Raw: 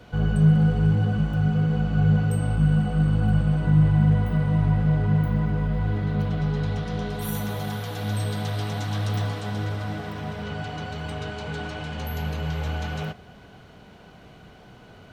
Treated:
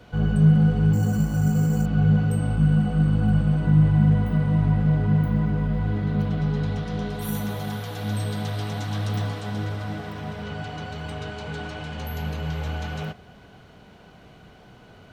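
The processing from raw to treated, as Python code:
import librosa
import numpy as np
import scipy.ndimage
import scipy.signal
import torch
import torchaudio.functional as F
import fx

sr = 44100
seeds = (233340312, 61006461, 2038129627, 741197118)

y = fx.dynamic_eq(x, sr, hz=230.0, q=1.5, threshold_db=-33.0, ratio=4.0, max_db=5)
y = fx.resample_bad(y, sr, factor=6, down='filtered', up='hold', at=(0.93, 1.86))
y = y * 10.0 ** (-1.0 / 20.0)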